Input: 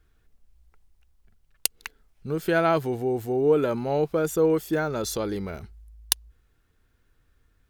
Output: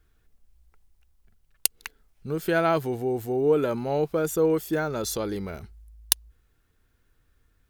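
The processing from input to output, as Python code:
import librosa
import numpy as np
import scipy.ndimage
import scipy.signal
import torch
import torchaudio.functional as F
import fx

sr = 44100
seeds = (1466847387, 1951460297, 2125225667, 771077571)

y = fx.high_shelf(x, sr, hz=8300.0, db=4.5)
y = F.gain(torch.from_numpy(y), -1.0).numpy()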